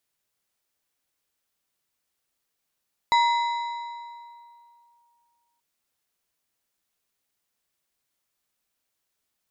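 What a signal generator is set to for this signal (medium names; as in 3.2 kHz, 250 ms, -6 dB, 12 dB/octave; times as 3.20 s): FM tone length 2.48 s, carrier 945 Hz, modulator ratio 3.15, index 0.6, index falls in 1.97 s linear, decay 2.49 s, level -15 dB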